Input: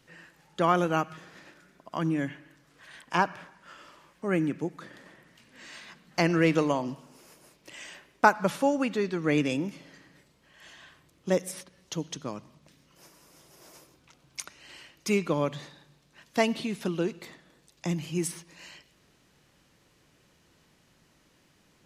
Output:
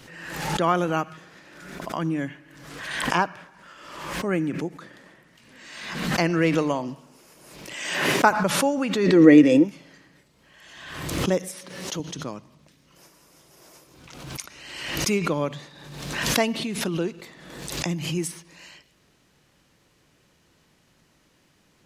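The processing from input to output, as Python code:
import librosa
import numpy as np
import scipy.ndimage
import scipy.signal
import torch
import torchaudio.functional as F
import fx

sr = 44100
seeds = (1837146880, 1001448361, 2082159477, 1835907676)

y = fx.highpass(x, sr, hz=130.0, slope=24, at=(7.76, 8.31))
y = fx.small_body(y, sr, hz=(320.0, 490.0, 1900.0), ring_ms=45, db=15, at=(9.05, 9.63), fade=0.02)
y = fx.highpass(y, sr, hz=170.0, slope=12, at=(11.48, 12.0))
y = fx.pre_swell(y, sr, db_per_s=45.0)
y = F.gain(torch.from_numpy(y), 1.5).numpy()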